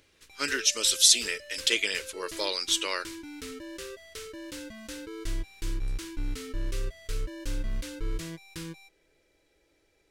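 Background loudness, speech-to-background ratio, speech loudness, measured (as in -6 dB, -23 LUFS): -39.5 LUFS, 14.5 dB, -25.0 LUFS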